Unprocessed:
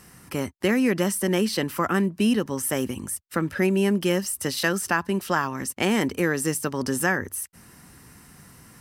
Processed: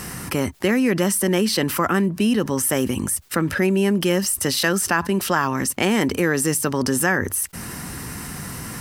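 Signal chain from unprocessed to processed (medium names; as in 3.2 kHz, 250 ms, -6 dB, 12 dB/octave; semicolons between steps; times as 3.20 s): level flattener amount 50%; trim +1.5 dB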